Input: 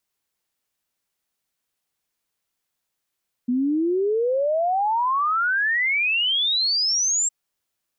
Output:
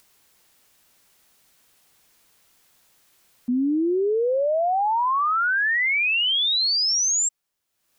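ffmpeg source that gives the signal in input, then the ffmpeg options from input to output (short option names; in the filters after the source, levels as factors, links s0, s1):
-f lavfi -i "aevalsrc='0.119*clip(min(t,3.81-t)/0.01,0,1)*sin(2*PI*240*3.81/log(7600/240)*(exp(log(7600/240)*t/3.81)-1))':d=3.81:s=44100"
-af "acompressor=mode=upward:threshold=0.00631:ratio=2.5"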